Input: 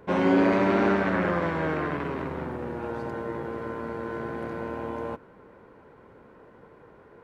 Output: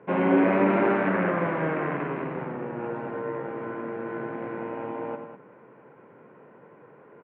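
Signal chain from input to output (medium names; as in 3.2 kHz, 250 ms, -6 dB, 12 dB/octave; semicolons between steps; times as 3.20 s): elliptic band-pass 130–2600 Hz, stop band 40 dB; on a send: loudspeakers at several distances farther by 32 m -8 dB, 69 m -10 dB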